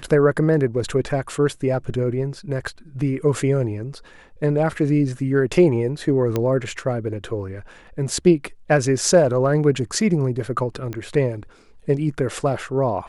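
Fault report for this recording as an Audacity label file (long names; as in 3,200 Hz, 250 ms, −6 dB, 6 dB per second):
6.360000	6.360000	click −9 dBFS
10.930000	10.930000	click −17 dBFS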